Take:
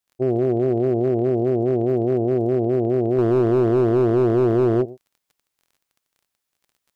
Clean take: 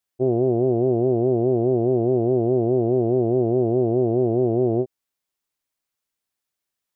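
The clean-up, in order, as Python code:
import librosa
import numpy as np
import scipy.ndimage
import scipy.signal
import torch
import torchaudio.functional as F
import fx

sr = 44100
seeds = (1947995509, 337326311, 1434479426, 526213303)

y = fx.fix_declip(x, sr, threshold_db=-11.5)
y = fx.fix_declick_ar(y, sr, threshold=6.5)
y = fx.fix_echo_inverse(y, sr, delay_ms=115, level_db=-19.5)
y = fx.gain(y, sr, db=fx.steps((0.0, 0.0), (3.18, -3.5)))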